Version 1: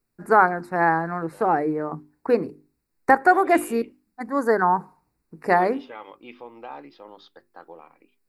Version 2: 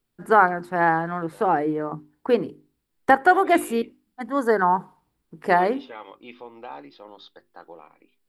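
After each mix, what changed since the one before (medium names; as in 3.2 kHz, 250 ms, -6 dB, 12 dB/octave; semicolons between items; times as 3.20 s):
first voice: remove Butterworth band-stop 3.2 kHz, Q 2.4; second voice: add peaking EQ 3.8 kHz +5.5 dB 0.38 oct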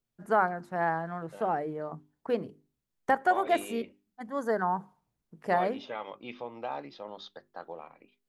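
first voice -10.5 dB; master: add graphic EQ with 31 bands 125 Hz +8 dB, 200 Hz +6 dB, 315 Hz -4 dB, 630 Hz +7 dB, 6.3 kHz +8 dB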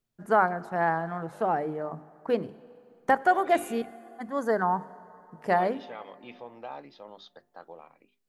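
second voice -4.0 dB; reverb: on, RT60 2.9 s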